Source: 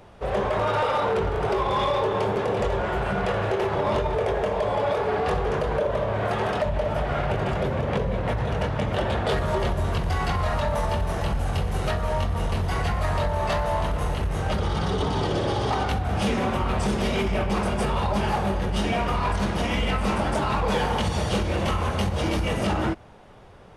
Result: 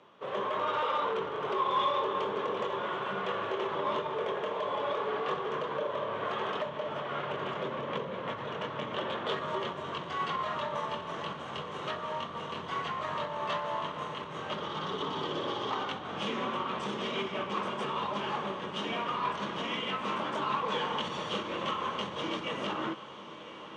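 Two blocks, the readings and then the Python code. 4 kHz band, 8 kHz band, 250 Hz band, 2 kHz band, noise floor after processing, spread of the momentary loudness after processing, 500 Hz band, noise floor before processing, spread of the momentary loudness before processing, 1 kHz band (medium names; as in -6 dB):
-3.5 dB, -14.5 dB, -11.5 dB, -7.0 dB, -42 dBFS, 6 LU, -9.0 dB, -28 dBFS, 3 LU, -5.5 dB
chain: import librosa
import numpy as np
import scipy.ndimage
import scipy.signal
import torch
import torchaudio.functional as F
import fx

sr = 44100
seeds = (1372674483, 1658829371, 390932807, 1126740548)

y = fx.cabinet(x, sr, low_hz=170.0, low_slope=24, high_hz=6400.0, hz=(200.0, 740.0, 1100.0, 3200.0, 4900.0), db=(-5, -7, 9, 8, -8))
y = fx.echo_diffused(y, sr, ms=1073, feedback_pct=57, wet_db=-13.0)
y = y * librosa.db_to_amplitude(-8.5)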